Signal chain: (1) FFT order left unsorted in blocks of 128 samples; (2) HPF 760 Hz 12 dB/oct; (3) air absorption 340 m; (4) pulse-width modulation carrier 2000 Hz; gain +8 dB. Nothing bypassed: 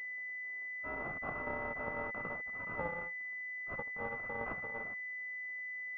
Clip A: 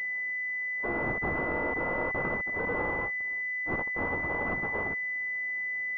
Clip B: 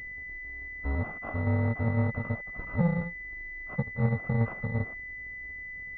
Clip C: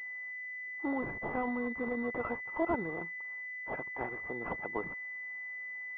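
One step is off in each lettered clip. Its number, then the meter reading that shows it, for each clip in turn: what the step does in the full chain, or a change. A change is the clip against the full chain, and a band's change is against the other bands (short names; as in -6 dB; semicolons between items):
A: 3, 250 Hz band +3.0 dB; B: 2, 125 Hz band +21.0 dB; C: 1, 250 Hz band +10.0 dB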